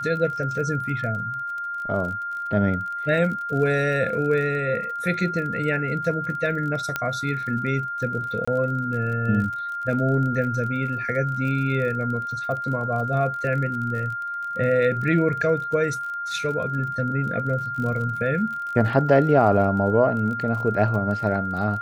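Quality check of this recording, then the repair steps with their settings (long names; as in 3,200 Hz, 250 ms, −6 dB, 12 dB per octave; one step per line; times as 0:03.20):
surface crackle 37 per second −32 dBFS
whistle 1,400 Hz −27 dBFS
0:06.96: click −10 dBFS
0:08.45–0:08.47: drop-out 25 ms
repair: click removal
notch filter 1,400 Hz, Q 30
repair the gap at 0:08.45, 25 ms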